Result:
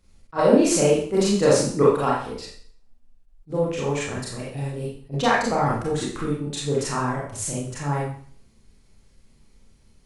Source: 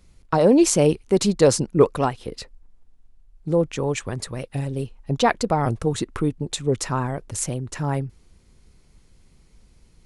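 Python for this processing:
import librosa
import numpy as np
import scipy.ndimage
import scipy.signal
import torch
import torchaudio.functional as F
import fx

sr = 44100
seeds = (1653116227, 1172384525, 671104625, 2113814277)

y = fx.dynamic_eq(x, sr, hz=1500.0, q=0.96, threshold_db=-37.0, ratio=4.0, max_db=5)
y = fx.rev_schroeder(y, sr, rt60_s=0.53, comb_ms=28, drr_db=-6.0)
y = fx.attack_slew(y, sr, db_per_s=360.0)
y = y * librosa.db_to_amplitude(-8.0)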